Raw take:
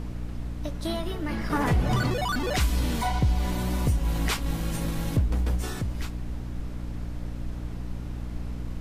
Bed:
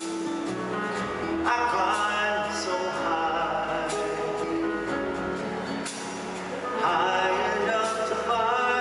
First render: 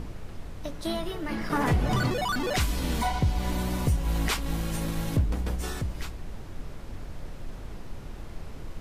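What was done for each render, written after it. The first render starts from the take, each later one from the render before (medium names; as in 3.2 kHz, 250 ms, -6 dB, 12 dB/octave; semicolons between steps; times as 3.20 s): de-hum 60 Hz, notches 5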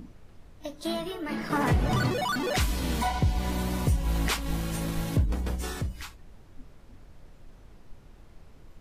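noise print and reduce 12 dB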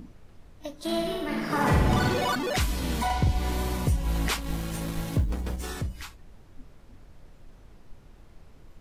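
0.83–2.35 s: flutter echo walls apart 9.2 m, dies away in 1 s; 3.05–3.77 s: doubling 46 ms -5 dB; 4.40–5.69 s: companding laws mixed up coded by A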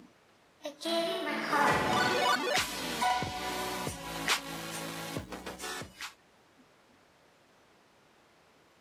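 frequency weighting A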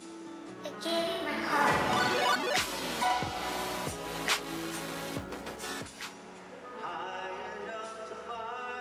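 add bed -14.5 dB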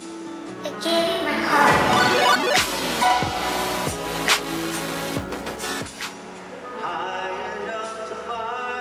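trim +10.5 dB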